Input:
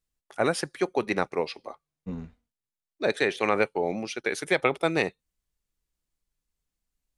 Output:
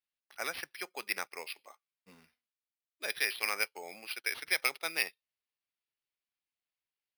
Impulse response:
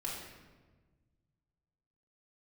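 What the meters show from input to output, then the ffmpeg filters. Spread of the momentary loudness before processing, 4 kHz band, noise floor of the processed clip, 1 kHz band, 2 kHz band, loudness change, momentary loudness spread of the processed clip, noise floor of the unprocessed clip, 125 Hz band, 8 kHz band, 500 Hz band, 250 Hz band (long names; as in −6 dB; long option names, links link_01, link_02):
15 LU, −1.0 dB, below −85 dBFS, −12.5 dB, −4.0 dB, −7.5 dB, 13 LU, below −85 dBFS, below −25 dB, −0.5 dB, −19.5 dB, −24.0 dB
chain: -af "bandpass=frequency=2600:width_type=q:width=1.8:csg=0,acrusher=samples=6:mix=1:aa=0.000001"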